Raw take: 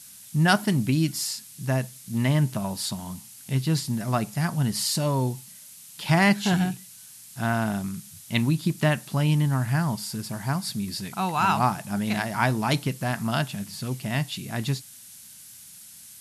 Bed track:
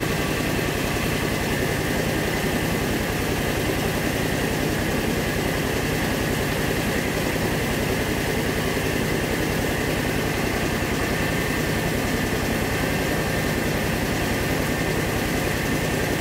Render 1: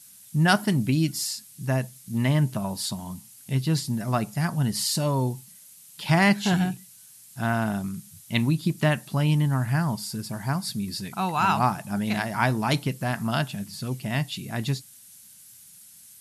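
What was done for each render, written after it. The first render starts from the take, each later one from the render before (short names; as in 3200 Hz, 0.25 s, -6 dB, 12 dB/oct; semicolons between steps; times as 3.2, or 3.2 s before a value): denoiser 6 dB, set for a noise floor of -47 dBFS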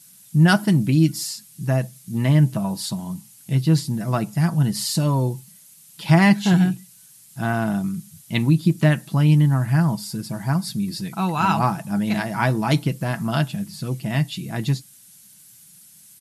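bell 230 Hz +5 dB 2.3 oct; comb 6.1 ms, depth 42%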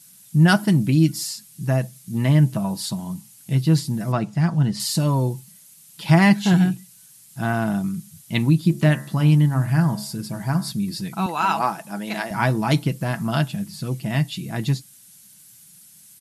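4.12–4.8 air absorption 80 m; 8.62–10.72 de-hum 70.3 Hz, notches 29; 11.26–12.31 HPF 330 Hz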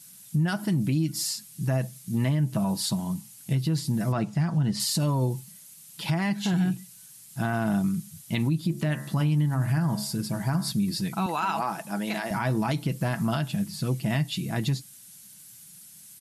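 compressor, threshold -19 dBFS, peak gain reduction 9.5 dB; limiter -17.5 dBFS, peak gain reduction 7.5 dB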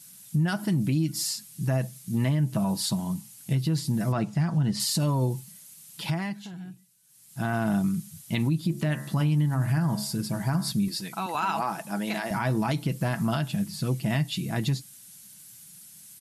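6–7.52 dip -16 dB, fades 0.49 s; 10.88–11.35 HPF 490 Hz 6 dB/oct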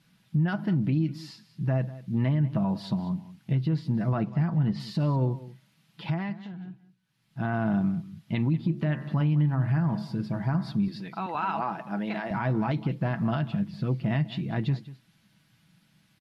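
air absorption 340 m; echo 0.193 s -17 dB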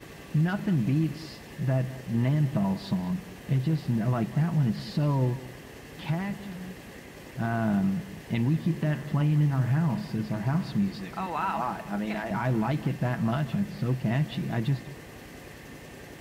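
add bed track -21.5 dB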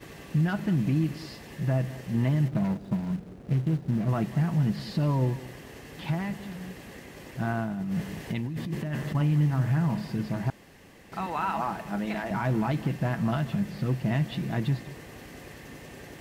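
2.48–4.09 median filter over 41 samples; 7.44–9.15 negative-ratio compressor -30 dBFS; 10.5–11.12 room tone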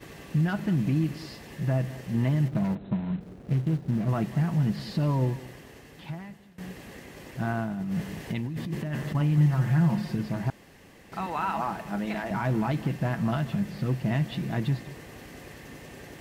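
2.75–3.21 brick-wall FIR low-pass 4200 Hz; 5.23–6.58 fade out, to -20.5 dB; 9.37–10.15 comb 5.6 ms, depth 66%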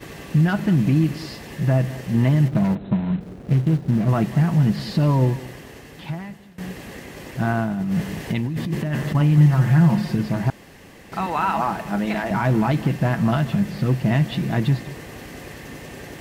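gain +7.5 dB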